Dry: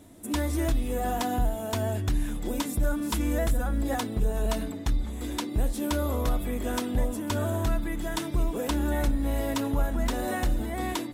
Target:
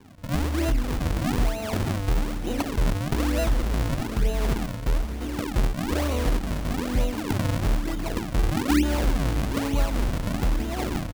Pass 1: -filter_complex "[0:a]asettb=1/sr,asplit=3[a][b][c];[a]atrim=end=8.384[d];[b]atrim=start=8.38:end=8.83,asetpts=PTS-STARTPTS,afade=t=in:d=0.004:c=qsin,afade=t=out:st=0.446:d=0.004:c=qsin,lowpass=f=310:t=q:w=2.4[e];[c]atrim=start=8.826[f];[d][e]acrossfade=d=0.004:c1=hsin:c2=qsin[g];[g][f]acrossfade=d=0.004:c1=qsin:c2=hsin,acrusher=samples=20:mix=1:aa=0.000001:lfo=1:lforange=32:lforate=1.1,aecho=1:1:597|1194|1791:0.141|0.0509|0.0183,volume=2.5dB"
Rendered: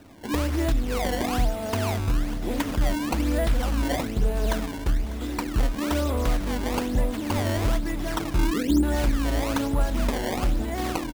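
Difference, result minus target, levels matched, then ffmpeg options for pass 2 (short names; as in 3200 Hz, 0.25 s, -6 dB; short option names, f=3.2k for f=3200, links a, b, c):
decimation with a swept rate: distortion -6 dB
-filter_complex "[0:a]asettb=1/sr,asplit=3[a][b][c];[a]atrim=end=8.384[d];[b]atrim=start=8.38:end=8.83,asetpts=PTS-STARTPTS,afade=t=in:d=0.004:c=qsin,afade=t=out:st=0.446:d=0.004:c=qsin,lowpass=f=310:t=q:w=2.4[e];[c]atrim=start=8.826[f];[d][e]acrossfade=d=0.004:c1=hsin:c2=qsin[g];[g][f]acrossfade=d=0.004:c1=qsin:c2=hsin,acrusher=samples=63:mix=1:aa=0.000001:lfo=1:lforange=101:lforate=1.1,aecho=1:1:597|1194|1791:0.141|0.0509|0.0183,volume=2.5dB"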